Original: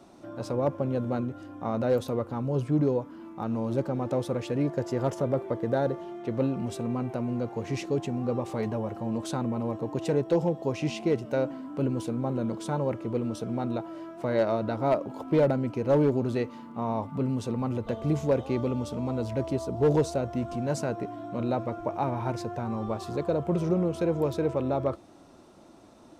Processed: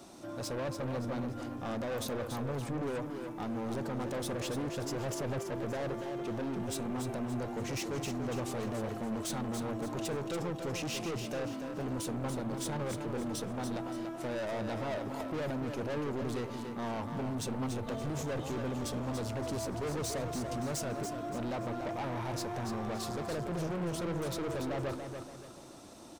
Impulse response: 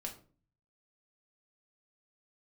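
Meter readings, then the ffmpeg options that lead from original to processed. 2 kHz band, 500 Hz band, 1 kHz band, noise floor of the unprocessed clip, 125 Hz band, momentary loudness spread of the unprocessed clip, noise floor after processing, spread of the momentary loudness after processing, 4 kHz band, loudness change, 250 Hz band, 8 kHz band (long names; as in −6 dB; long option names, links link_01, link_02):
−0.5 dB, −9.0 dB, −5.5 dB, −52 dBFS, −7.5 dB, 7 LU, −43 dBFS, 3 LU, +2.0 dB, −7.5 dB, −7.0 dB, +5.0 dB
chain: -af "highshelf=frequency=3600:gain=11.5,alimiter=limit=-18.5dB:level=0:latency=1:release=14,asoftclip=type=tanh:threshold=-34dB,aecho=1:1:286|572|858|1144:0.447|0.17|0.0645|0.0245"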